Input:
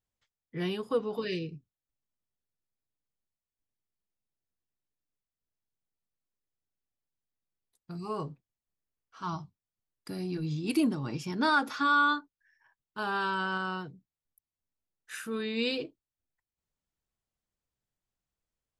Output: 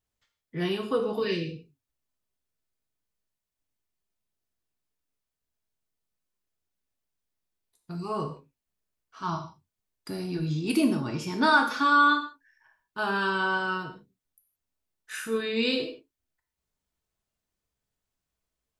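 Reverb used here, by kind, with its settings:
reverb whose tail is shaped and stops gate 190 ms falling, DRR 3 dB
level +3 dB

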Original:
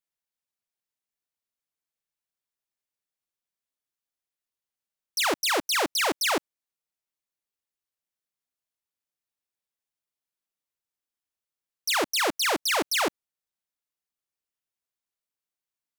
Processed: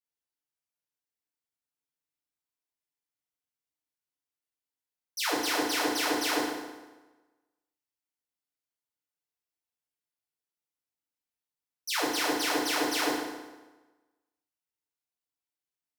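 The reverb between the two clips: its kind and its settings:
feedback delay network reverb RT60 1.2 s, low-frequency decay 1×, high-frequency decay 0.8×, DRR −8 dB
level −12 dB

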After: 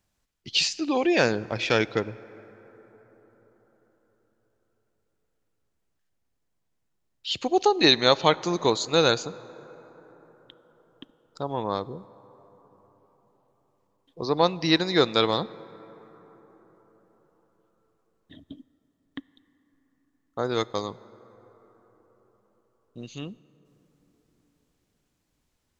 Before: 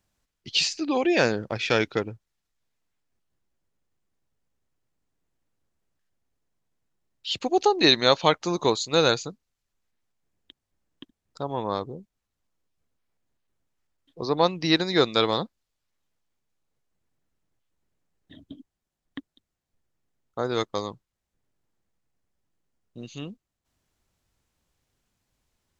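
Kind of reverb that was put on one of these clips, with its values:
dense smooth reverb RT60 4.9 s, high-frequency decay 0.35×, DRR 19 dB

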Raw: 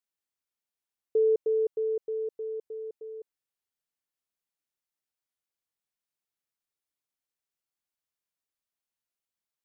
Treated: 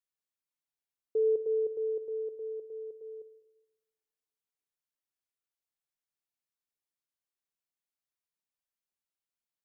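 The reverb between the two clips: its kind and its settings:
rectangular room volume 690 cubic metres, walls mixed, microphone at 0.36 metres
level −5.5 dB

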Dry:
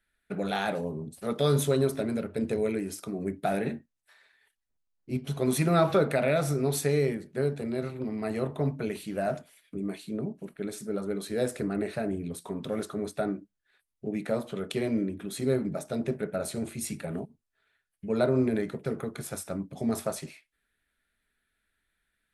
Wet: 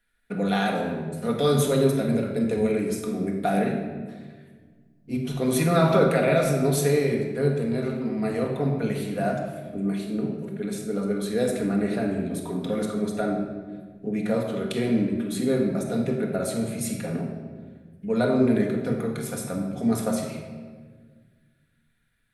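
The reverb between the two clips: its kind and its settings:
rectangular room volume 1,600 cubic metres, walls mixed, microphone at 1.8 metres
level +1.5 dB

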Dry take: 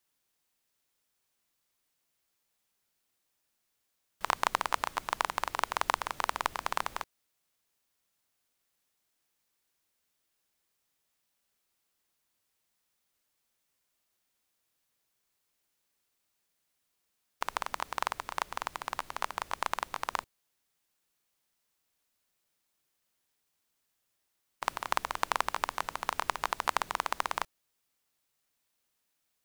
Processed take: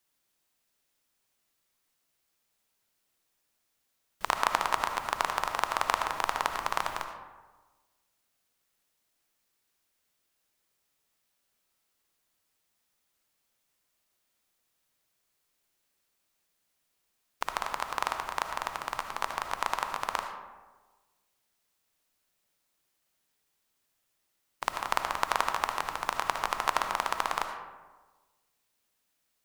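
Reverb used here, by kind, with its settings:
comb and all-pass reverb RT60 1.3 s, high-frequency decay 0.45×, pre-delay 35 ms, DRR 5.5 dB
level +1.5 dB

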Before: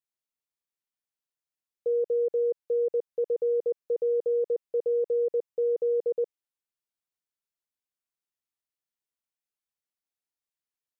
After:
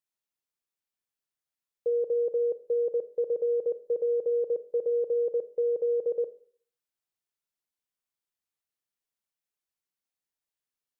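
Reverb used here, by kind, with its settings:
four-comb reverb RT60 0.51 s, combs from 25 ms, DRR 12.5 dB

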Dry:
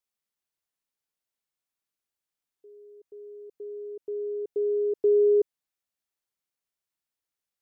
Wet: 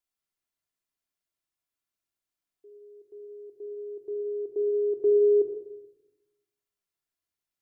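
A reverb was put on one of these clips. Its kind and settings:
rectangular room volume 2,800 cubic metres, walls furnished, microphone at 3.1 metres
level −3.5 dB

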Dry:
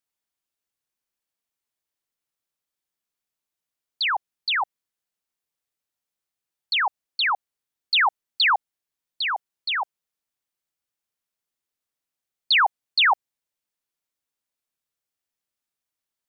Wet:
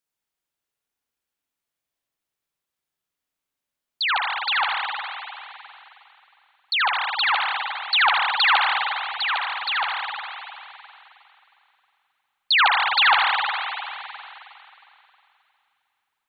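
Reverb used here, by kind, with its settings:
spring reverb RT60 2.9 s, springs 44/51 ms, chirp 30 ms, DRR −1.5 dB

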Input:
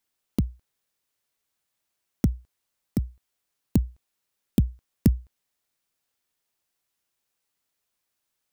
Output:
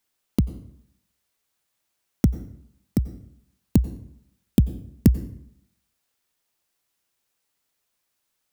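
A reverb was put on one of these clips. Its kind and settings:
dense smooth reverb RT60 0.72 s, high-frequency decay 0.65×, pre-delay 80 ms, DRR 14.5 dB
level +3.5 dB

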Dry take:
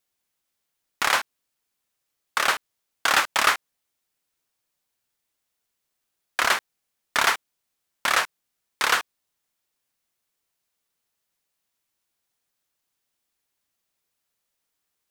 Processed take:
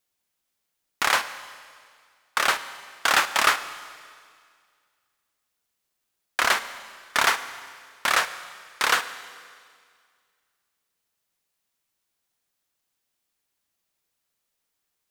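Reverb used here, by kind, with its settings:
four-comb reverb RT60 2 s, combs from 33 ms, DRR 12.5 dB

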